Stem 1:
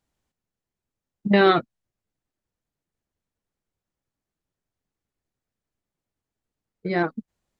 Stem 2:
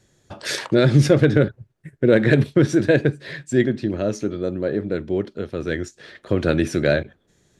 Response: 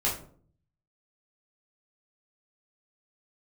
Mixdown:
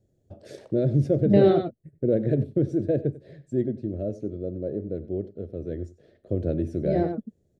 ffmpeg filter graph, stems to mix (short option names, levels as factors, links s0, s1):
-filter_complex "[0:a]highshelf=f=3100:g=11,volume=0.944,asplit=2[s0][s1];[s1]volume=0.473[s2];[1:a]equalizer=f=88:t=o:w=0.37:g=7,volume=0.422,asplit=2[s3][s4];[s4]volume=0.133[s5];[s2][s5]amix=inputs=2:normalize=0,aecho=0:1:94:1[s6];[s0][s3][s6]amix=inputs=3:normalize=0,firequalizer=gain_entry='entry(640,0);entry(950,-21);entry(8600,-17)':delay=0.05:min_phase=1"